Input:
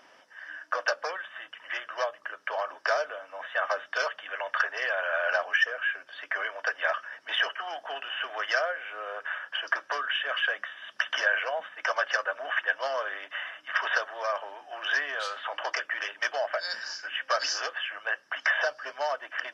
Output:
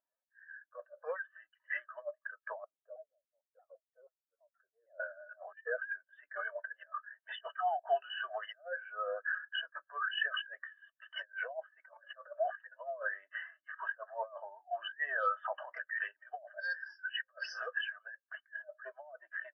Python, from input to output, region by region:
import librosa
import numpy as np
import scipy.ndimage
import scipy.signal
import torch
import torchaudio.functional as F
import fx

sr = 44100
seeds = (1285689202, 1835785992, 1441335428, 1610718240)

y = fx.chain(x, sr, fx.bandpass_q(hz=170.0, q=1.9),
    fx.vibrato_shape(shape='saw_down', rate_hz=6.3, depth_cents=250.0), at=(2.64, 5.0))
y = fx.lowpass(y, sr, hz=2100.0, slope=6)
y = fx.over_compress(y, sr, threshold_db=-34.0, ratio=-0.5)
y = fx.spectral_expand(y, sr, expansion=2.5)
y = F.gain(torch.from_numpy(y), -3.0).numpy()